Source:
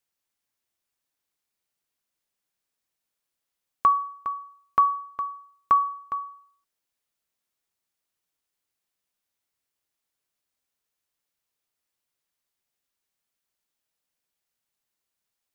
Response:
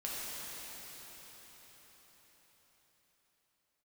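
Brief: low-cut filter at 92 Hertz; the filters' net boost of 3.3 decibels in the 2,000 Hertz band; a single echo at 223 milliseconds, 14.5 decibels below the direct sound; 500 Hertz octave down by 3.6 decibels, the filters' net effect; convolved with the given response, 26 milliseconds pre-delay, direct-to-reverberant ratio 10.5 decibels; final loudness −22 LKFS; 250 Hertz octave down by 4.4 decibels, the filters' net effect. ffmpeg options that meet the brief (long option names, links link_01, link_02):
-filter_complex "[0:a]highpass=92,equalizer=frequency=250:width_type=o:gain=-4.5,equalizer=frequency=500:width_type=o:gain=-4,equalizer=frequency=2000:width_type=o:gain=5,aecho=1:1:223:0.188,asplit=2[link_01][link_02];[1:a]atrim=start_sample=2205,adelay=26[link_03];[link_02][link_03]afir=irnorm=-1:irlink=0,volume=-14dB[link_04];[link_01][link_04]amix=inputs=2:normalize=0,volume=4dB"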